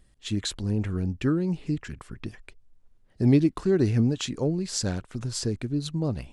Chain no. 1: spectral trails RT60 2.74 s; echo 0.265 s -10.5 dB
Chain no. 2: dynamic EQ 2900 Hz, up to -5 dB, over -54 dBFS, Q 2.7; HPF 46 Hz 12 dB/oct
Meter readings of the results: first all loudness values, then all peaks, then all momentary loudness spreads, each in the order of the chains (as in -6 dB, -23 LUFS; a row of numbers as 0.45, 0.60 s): -22.5, -27.0 LUFS; -7.5, -10.0 dBFS; 13, 11 LU